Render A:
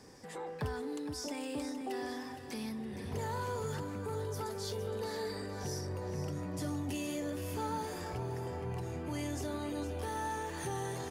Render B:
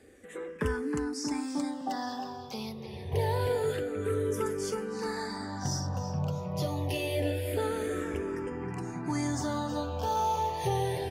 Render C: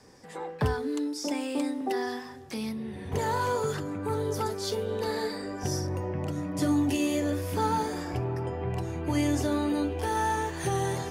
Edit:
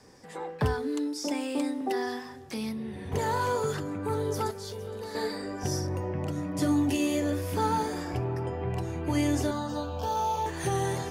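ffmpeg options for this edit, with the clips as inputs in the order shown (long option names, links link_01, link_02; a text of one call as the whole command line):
ffmpeg -i take0.wav -i take1.wav -i take2.wav -filter_complex "[2:a]asplit=3[link_01][link_02][link_03];[link_01]atrim=end=4.512[link_04];[0:a]atrim=start=4.508:end=5.152[link_05];[link_02]atrim=start=5.148:end=9.512[link_06];[1:a]atrim=start=9.508:end=10.462[link_07];[link_03]atrim=start=10.458[link_08];[link_04][link_05]acrossfade=duration=0.004:curve1=hsin:curve2=hsin[link_09];[link_09][link_06]acrossfade=duration=0.004:curve1=hsin:curve2=hsin[link_10];[link_10][link_07]acrossfade=duration=0.004:curve1=hsin:curve2=hsin[link_11];[link_11][link_08]acrossfade=duration=0.004:curve1=hsin:curve2=hsin" out.wav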